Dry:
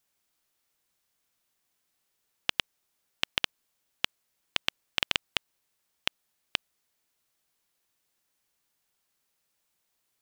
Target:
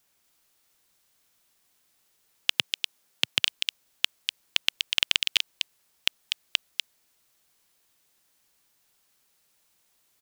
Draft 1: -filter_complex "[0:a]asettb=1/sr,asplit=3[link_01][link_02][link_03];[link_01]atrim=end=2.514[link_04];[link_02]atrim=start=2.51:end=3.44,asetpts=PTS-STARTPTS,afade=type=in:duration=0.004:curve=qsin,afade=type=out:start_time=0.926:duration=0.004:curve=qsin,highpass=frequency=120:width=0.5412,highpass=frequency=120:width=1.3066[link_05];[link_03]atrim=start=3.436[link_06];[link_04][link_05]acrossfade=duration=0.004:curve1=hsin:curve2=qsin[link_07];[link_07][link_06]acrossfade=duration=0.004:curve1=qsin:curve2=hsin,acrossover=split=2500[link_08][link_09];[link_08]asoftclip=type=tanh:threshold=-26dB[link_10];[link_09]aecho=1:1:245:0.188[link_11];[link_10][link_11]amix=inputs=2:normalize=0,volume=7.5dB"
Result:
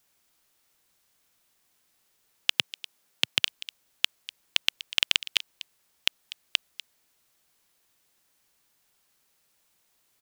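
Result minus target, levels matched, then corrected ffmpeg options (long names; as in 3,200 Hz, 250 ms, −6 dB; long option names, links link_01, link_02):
echo-to-direct −11 dB
-filter_complex "[0:a]asettb=1/sr,asplit=3[link_01][link_02][link_03];[link_01]atrim=end=2.514[link_04];[link_02]atrim=start=2.51:end=3.44,asetpts=PTS-STARTPTS,afade=type=in:duration=0.004:curve=qsin,afade=type=out:start_time=0.926:duration=0.004:curve=qsin,highpass=frequency=120:width=0.5412,highpass=frequency=120:width=1.3066[link_05];[link_03]atrim=start=3.436[link_06];[link_04][link_05]acrossfade=duration=0.004:curve1=hsin:curve2=qsin[link_07];[link_07][link_06]acrossfade=duration=0.004:curve1=qsin:curve2=hsin,acrossover=split=2500[link_08][link_09];[link_08]asoftclip=type=tanh:threshold=-26dB[link_10];[link_09]aecho=1:1:245:0.668[link_11];[link_10][link_11]amix=inputs=2:normalize=0,volume=7.5dB"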